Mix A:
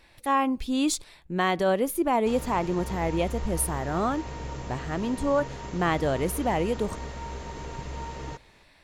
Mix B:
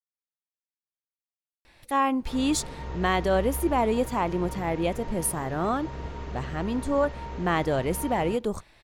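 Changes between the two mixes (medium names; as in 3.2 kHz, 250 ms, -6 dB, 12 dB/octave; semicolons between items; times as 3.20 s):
speech: entry +1.65 s; background: add distance through air 150 m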